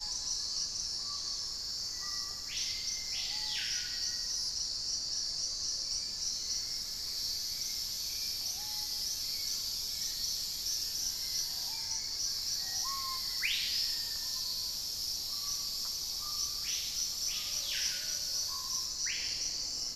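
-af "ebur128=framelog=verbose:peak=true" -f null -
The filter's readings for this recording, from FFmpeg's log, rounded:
Integrated loudness:
  I:         -33.1 LUFS
  Threshold: -43.1 LUFS
Loudness range:
  LRA:         1.5 LU
  Threshold: -53.1 LUFS
  LRA low:   -33.8 LUFS
  LRA high:  -32.3 LUFS
True peak:
  Peak:      -20.4 dBFS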